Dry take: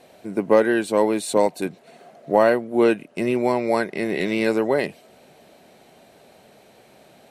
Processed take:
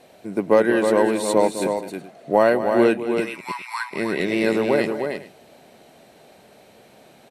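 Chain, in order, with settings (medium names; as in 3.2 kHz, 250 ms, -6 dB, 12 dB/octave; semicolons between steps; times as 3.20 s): 3.20–3.91 s: steep high-pass 940 Hz 72 dB/octave; on a send: multi-tap echo 206/314/419 ms -12/-6/-19.5 dB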